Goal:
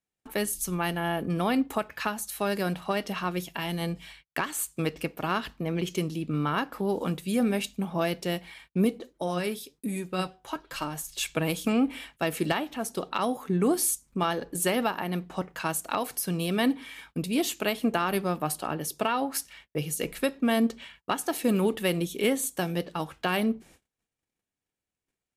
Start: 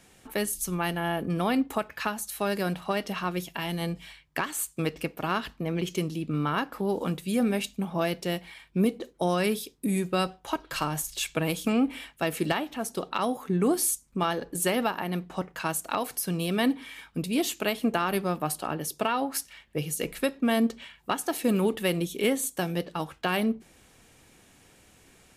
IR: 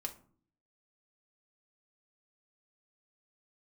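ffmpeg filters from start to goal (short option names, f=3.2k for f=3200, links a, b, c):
-filter_complex "[0:a]agate=range=-34dB:threshold=-52dB:ratio=16:detection=peak,asplit=3[a][b][c];[a]afade=t=out:st=8.99:d=0.02[d];[b]flanger=delay=3.2:depth=4.9:regen=57:speed=1.2:shape=sinusoidal,afade=t=in:st=8.99:d=0.02,afade=t=out:st=11.17:d=0.02[e];[c]afade=t=in:st=11.17:d=0.02[f];[d][e][f]amix=inputs=3:normalize=0"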